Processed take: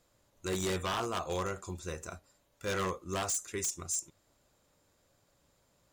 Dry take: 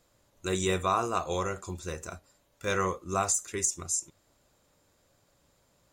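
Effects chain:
wave folding −23.5 dBFS
level −3 dB

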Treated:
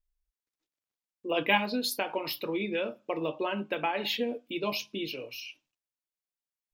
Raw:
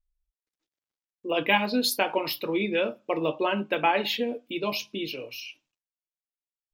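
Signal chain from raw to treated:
0:01.59–0:04.02: downward compressor 2 to 1, threshold −27 dBFS, peak gain reduction 6 dB
level −2.5 dB

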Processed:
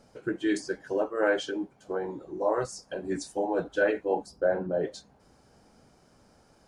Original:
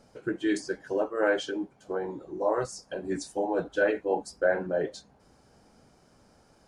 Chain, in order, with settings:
0:04.26–0:04.83: graphic EQ with 10 bands 125 Hz +5 dB, 2,000 Hz −10 dB, 8,000 Hz −9 dB

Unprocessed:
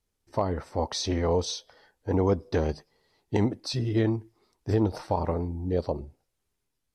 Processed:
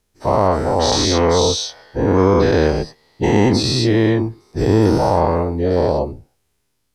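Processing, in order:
every bin's largest magnitude spread in time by 240 ms
level +6 dB

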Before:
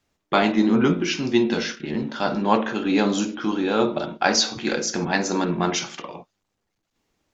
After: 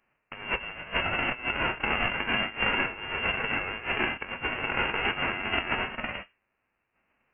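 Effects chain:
spectral envelope flattened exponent 0.1
high-pass filter 220 Hz 6 dB per octave
compressor whose output falls as the input rises −27 dBFS, ratio −0.5
convolution reverb RT60 0.30 s, pre-delay 3 ms, DRR 13 dB
voice inversion scrambler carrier 3,000 Hz
level +2 dB

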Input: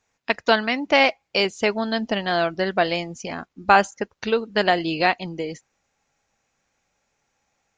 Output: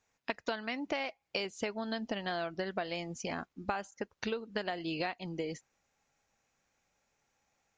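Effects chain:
downward compressor 16 to 1, threshold −26 dBFS, peak gain reduction 17.5 dB
level −5.5 dB

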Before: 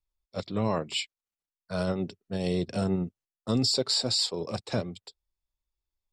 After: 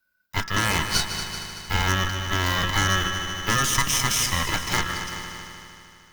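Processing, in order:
one scale factor per block 5 bits
flat-topped bell 7,100 Hz −12 dB
mains-hum notches 60/120/180/240/300/360 Hz
ring modulation 1,500 Hz
on a send at −10.5 dB: convolution reverb RT60 0.25 s, pre-delay 3 ms
on the sum: harmonic generator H 8 −16 dB, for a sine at −14.5 dBFS
in parallel at +1.5 dB: brickwall limiter −25.5 dBFS, peak gain reduction 12 dB
on the sum: echo machine with several playback heads 76 ms, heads second and third, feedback 61%, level −12.5 dB
downward compressor 1.5 to 1, threshold −37 dBFS, peak gain reduction 6.5 dB
bass and treble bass +12 dB, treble +10 dB
level +6.5 dB

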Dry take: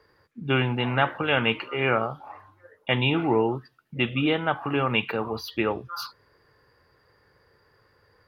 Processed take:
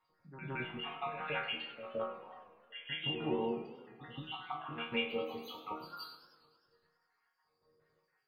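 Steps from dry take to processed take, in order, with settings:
time-frequency cells dropped at random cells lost 69%
resonators tuned to a chord D#3 minor, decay 0.54 s
on a send: backwards echo 167 ms −10 dB
on the sum: feedback echo with a swinging delay time 103 ms, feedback 70%, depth 210 cents, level −17 dB
level +8.5 dB

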